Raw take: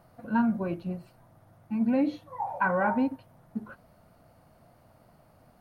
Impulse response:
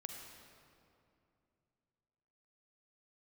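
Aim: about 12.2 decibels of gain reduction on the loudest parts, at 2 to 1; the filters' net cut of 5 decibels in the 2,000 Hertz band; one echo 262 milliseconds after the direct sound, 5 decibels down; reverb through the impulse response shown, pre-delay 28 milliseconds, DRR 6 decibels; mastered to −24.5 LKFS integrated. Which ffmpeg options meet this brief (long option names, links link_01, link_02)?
-filter_complex "[0:a]equalizer=frequency=2000:width_type=o:gain=-8,acompressor=threshold=-45dB:ratio=2,aecho=1:1:262:0.562,asplit=2[link_01][link_02];[1:a]atrim=start_sample=2205,adelay=28[link_03];[link_02][link_03]afir=irnorm=-1:irlink=0,volume=-3dB[link_04];[link_01][link_04]amix=inputs=2:normalize=0,volume=15dB"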